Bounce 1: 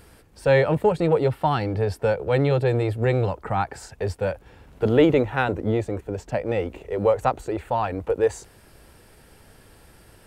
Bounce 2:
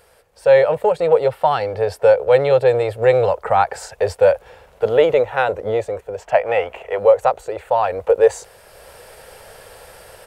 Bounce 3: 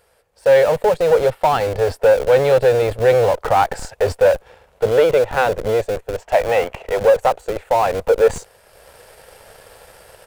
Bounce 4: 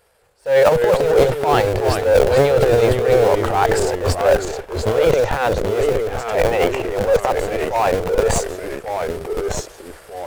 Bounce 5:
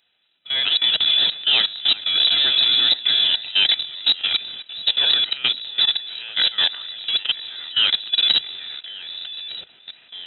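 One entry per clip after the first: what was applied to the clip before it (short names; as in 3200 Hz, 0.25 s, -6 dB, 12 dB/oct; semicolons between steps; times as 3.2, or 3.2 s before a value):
spectral gain 6.22–6.99, 620–3400 Hz +9 dB; resonant low shelf 390 Hz -9.5 dB, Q 3; AGC gain up to 12 dB; gain -1 dB
sample leveller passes 1; in parallel at -10 dB: Schmitt trigger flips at -20 dBFS; on the sum: gain -3.5 dB
transient shaper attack -11 dB, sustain +11 dB; echoes that change speed 0.19 s, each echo -2 st, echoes 2, each echo -6 dB; gain -1 dB
level quantiser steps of 17 dB; inverted band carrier 3900 Hz; notch comb 1100 Hz; gain +2.5 dB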